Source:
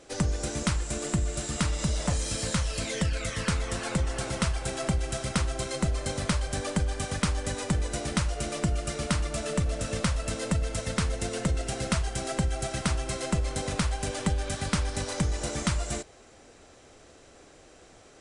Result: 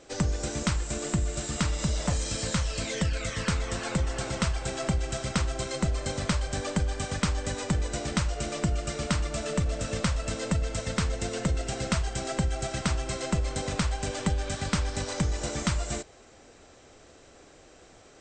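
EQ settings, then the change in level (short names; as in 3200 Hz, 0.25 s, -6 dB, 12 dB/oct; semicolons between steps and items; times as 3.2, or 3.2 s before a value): brick-wall FIR low-pass 8700 Hz; 0.0 dB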